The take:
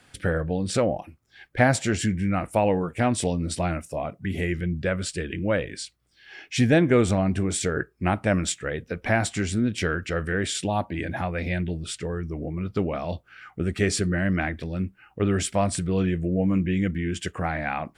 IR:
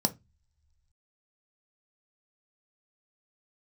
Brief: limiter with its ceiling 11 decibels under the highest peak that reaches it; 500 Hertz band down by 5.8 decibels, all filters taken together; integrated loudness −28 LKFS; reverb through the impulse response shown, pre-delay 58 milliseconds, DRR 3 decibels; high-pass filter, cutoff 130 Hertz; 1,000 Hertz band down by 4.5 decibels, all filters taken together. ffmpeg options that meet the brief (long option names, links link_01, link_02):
-filter_complex "[0:a]highpass=130,equalizer=frequency=500:width_type=o:gain=-6.5,equalizer=frequency=1000:width_type=o:gain=-3.5,alimiter=limit=-18.5dB:level=0:latency=1,asplit=2[link_01][link_02];[1:a]atrim=start_sample=2205,adelay=58[link_03];[link_02][link_03]afir=irnorm=-1:irlink=0,volume=-10dB[link_04];[link_01][link_04]amix=inputs=2:normalize=0,volume=-3.5dB"